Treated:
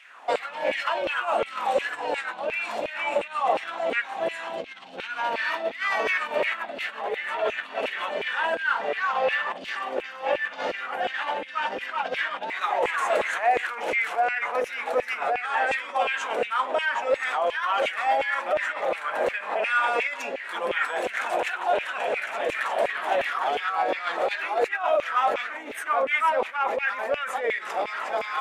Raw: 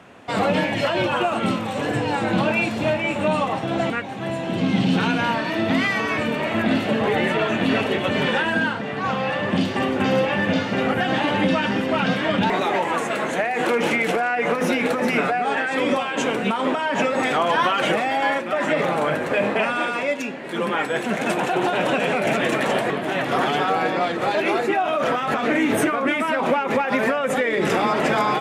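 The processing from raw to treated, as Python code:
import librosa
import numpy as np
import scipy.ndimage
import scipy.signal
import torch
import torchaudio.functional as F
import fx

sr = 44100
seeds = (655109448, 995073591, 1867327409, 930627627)

y = fx.low_shelf(x, sr, hz=350.0, db=7.0)
y = fx.over_compress(y, sr, threshold_db=-22.0, ratio=-1.0)
y = fx.filter_lfo_highpass(y, sr, shape='saw_down', hz=2.8, low_hz=470.0, high_hz=2500.0, q=3.4)
y = y * librosa.db_to_amplitude(-7.0)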